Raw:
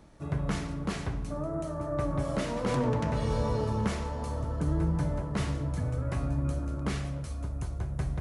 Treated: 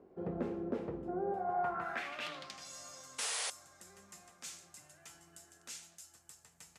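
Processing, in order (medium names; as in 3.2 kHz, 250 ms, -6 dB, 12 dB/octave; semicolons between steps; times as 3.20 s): band-pass sweep 350 Hz -> 5.8 kHz, 1.48–3.26 s; painted sound noise, 3.85–4.24 s, 340–8800 Hz -41 dBFS; tape speed +21%; trim +3.5 dB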